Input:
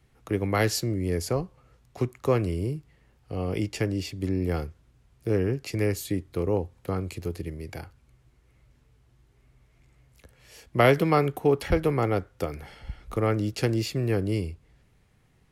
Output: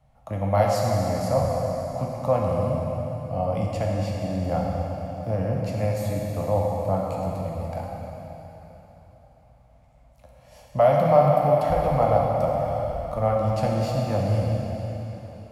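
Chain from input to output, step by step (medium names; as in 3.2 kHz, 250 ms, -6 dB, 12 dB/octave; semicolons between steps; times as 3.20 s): peak limiter -15 dBFS, peak gain reduction 8 dB; FFT filter 240 Hz 0 dB, 390 Hz -22 dB, 600 Hz +14 dB, 1.7 kHz -8 dB; plate-style reverb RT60 3.8 s, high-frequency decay 1×, DRR -2.5 dB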